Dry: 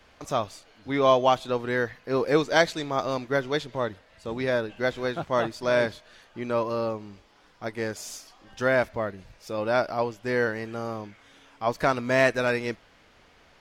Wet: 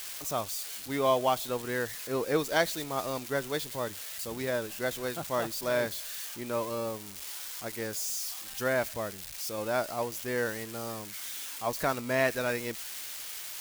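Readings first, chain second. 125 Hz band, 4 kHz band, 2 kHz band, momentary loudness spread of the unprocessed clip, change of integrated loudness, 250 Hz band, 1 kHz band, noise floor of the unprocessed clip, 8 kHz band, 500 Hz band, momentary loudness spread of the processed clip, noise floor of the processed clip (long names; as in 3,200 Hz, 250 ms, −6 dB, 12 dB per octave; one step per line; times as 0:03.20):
−6.0 dB, −2.0 dB, −5.5 dB, 16 LU, −5.5 dB, −6.0 dB, −6.0 dB, −58 dBFS, +7.5 dB, −6.0 dB, 9 LU, −43 dBFS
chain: spike at every zero crossing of −23.5 dBFS
level −6 dB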